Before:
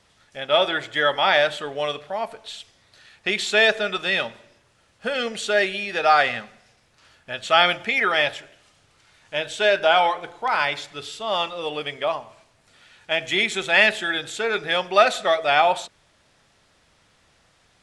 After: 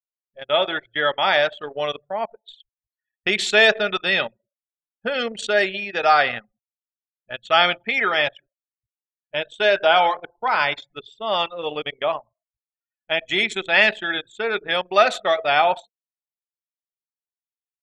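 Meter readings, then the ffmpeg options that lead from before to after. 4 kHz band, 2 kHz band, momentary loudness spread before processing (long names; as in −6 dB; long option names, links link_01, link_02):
+0.5 dB, +1.0 dB, 14 LU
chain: -af "dynaudnorm=framelen=420:gausssize=9:maxgain=8dB,afftfilt=real='re*gte(hypot(re,im),0.0126)':imag='im*gte(hypot(re,im),0.0126)':win_size=1024:overlap=0.75,anlmdn=158,volume=-1dB"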